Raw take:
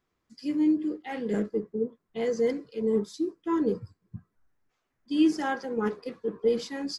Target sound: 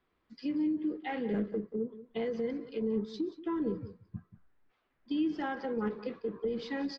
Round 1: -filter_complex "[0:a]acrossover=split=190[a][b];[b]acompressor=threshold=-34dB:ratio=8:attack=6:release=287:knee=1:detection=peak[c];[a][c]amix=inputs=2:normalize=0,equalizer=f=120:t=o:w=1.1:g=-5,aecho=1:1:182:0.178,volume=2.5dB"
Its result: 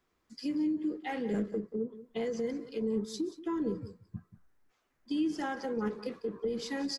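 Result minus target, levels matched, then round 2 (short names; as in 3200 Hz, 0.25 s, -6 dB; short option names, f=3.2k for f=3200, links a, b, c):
4000 Hz band +4.5 dB
-filter_complex "[0:a]acrossover=split=190[a][b];[b]acompressor=threshold=-34dB:ratio=8:attack=6:release=287:knee=1:detection=peak[c];[a][c]amix=inputs=2:normalize=0,lowpass=f=4k:w=0.5412,lowpass=f=4k:w=1.3066,equalizer=f=120:t=o:w=1.1:g=-5,aecho=1:1:182:0.178,volume=2.5dB"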